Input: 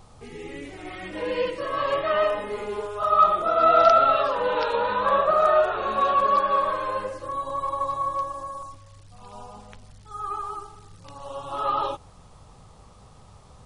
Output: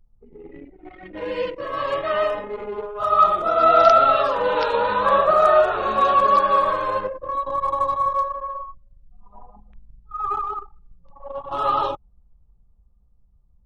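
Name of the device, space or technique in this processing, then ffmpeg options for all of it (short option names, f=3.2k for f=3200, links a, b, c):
voice memo with heavy noise removal: -af "anlmdn=10,dynaudnorm=f=620:g=11:m=9dB"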